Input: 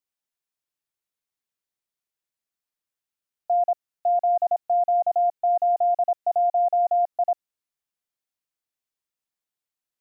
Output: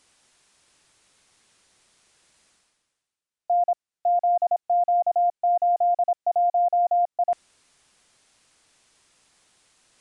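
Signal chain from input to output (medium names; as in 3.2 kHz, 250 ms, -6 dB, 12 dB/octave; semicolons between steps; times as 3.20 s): reverse; upward compressor, threshold -36 dBFS; reverse; resampled via 22.05 kHz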